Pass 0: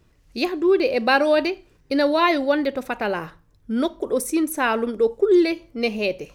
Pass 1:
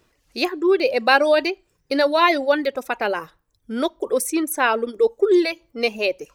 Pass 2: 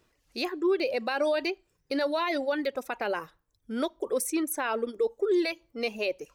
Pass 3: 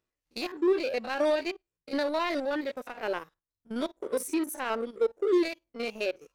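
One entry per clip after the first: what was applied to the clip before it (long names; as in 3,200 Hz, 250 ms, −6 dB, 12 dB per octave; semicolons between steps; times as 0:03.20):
reverb reduction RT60 0.64 s; bass and treble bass −12 dB, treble +1 dB; level +3 dB
brickwall limiter −13 dBFS, peak gain reduction 11.5 dB; level −6 dB
spectrum averaged block by block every 50 ms; power curve on the samples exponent 1.4; level +3 dB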